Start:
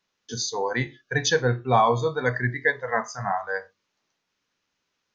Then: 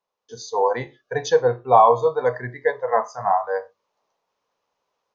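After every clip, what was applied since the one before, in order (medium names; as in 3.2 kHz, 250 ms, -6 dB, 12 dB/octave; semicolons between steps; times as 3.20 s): level rider gain up to 8.5 dB; high-order bell 700 Hz +14 dB; trim -13 dB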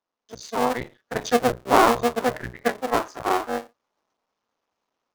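cycle switcher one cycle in 2, muted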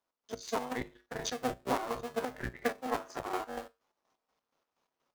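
compression 6:1, threshold -28 dBFS, peak gain reduction 16.5 dB; feedback comb 51 Hz, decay 0.29 s, harmonics odd, mix 70%; square tremolo 4.2 Hz, depth 60%, duty 45%; trim +6.5 dB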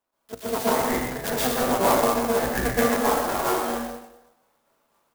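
delay 127 ms -7.5 dB; plate-style reverb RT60 0.83 s, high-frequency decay 0.9×, pre-delay 110 ms, DRR -8.5 dB; sampling jitter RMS 0.056 ms; trim +4 dB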